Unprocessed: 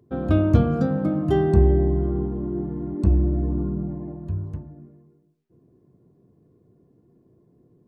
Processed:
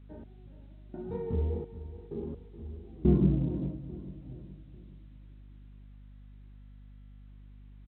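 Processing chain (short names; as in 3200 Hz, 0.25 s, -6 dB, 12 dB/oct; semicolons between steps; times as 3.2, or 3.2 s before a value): Doppler pass-by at 3.13, 52 m/s, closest 12 m; de-hum 96.66 Hz, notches 40; in parallel at -3 dB: limiter -51.5 dBFS, peak gain reduction 34.5 dB; on the sum: chorus 2.4 Hz, delay 19 ms, depth 6.2 ms; step gate "x...xxx.." 64 bpm -24 dB; hum 50 Hz, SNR 17 dB; tilt shelf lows +7 dB, about 1400 Hz; on a send: feedback echo 0.422 s, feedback 46%, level -14 dB; on the sum: A-law 64 kbps 8000 Hz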